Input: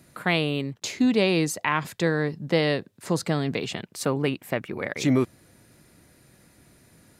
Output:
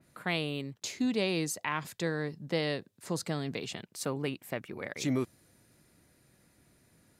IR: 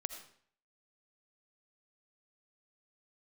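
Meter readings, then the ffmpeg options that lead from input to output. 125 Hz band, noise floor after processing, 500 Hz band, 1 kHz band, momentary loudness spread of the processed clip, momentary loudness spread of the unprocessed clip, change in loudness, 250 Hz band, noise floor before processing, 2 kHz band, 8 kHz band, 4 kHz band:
−9.0 dB, −67 dBFS, −9.0 dB, −9.0 dB, 8 LU, 8 LU, −8.5 dB, −9.0 dB, −58 dBFS, −8.5 dB, −4.5 dB, −7.0 dB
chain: -af "adynamicequalizer=threshold=0.00891:dfrequency=3700:dqfactor=0.7:tfrequency=3700:tqfactor=0.7:attack=5:release=100:ratio=0.375:range=2.5:mode=boostabove:tftype=highshelf,volume=-9dB"

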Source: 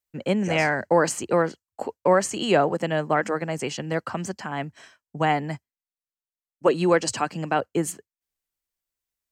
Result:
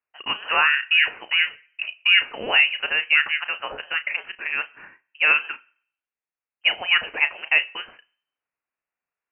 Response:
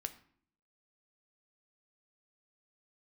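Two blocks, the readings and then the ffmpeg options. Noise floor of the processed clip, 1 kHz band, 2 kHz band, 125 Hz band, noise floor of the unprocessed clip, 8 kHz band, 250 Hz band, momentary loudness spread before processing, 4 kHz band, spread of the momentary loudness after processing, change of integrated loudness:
below −85 dBFS, −4.5 dB, +11.0 dB, below −25 dB, below −85 dBFS, below −40 dB, −21.5 dB, 12 LU, +13.5 dB, 13 LU, +4.0 dB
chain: -filter_complex "[0:a]highpass=frequency=660:width=0.5412,highpass=frequency=660:width=1.3066,asplit=2[link_01][link_02];[1:a]atrim=start_sample=2205,adelay=34[link_03];[link_02][link_03]afir=irnorm=-1:irlink=0,volume=-10dB[link_04];[link_01][link_04]amix=inputs=2:normalize=0,lowpass=frequency=2900:width_type=q:width=0.5098,lowpass=frequency=2900:width_type=q:width=0.6013,lowpass=frequency=2900:width_type=q:width=0.9,lowpass=frequency=2900:width_type=q:width=2.563,afreqshift=-3400,volume=6dB"

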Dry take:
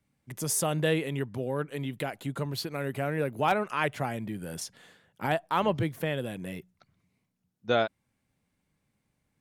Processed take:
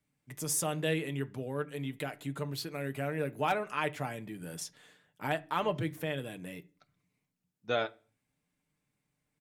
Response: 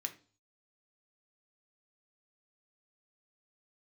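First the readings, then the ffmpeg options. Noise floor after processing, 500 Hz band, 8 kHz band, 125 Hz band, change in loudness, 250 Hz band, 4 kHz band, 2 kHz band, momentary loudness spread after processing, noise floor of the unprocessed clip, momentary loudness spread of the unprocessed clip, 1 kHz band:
−83 dBFS, −5.0 dB, −2.5 dB, −5.0 dB, −4.5 dB, −5.0 dB, −3.5 dB, −3.5 dB, 11 LU, −79 dBFS, 11 LU, −5.0 dB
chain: -filter_complex "[0:a]aecho=1:1:6.7:0.39,asplit=2[link_01][link_02];[1:a]atrim=start_sample=2205[link_03];[link_02][link_03]afir=irnorm=-1:irlink=0,volume=-4dB[link_04];[link_01][link_04]amix=inputs=2:normalize=0,volume=-7.5dB"

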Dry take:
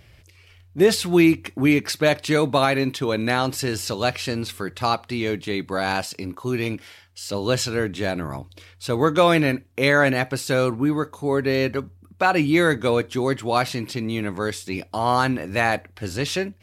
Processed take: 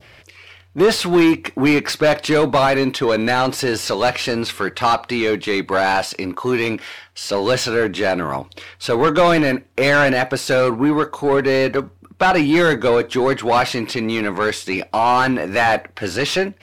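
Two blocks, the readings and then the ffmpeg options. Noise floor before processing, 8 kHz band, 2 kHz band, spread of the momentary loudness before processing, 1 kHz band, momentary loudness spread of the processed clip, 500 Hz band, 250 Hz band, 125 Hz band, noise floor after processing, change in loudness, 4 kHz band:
−52 dBFS, +2.5 dB, +5.0 dB, 11 LU, +6.0 dB, 9 LU, +5.0 dB, +3.5 dB, 0.0 dB, −50 dBFS, +4.5 dB, +4.5 dB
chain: -filter_complex "[0:a]adynamicequalizer=threshold=0.02:dfrequency=2200:dqfactor=0.81:tfrequency=2200:tqfactor=0.81:attack=5:release=100:ratio=0.375:range=2.5:mode=cutabove:tftype=bell,asplit=2[link_01][link_02];[link_02]highpass=frequency=720:poles=1,volume=21dB,asoftclip=type=tanh:threshold=-5.5dB[link_03];[link_01][link_03]amix=inputs=2:normalize=0,lowpass=frequency=2200:poles=1,volume=-6dB"

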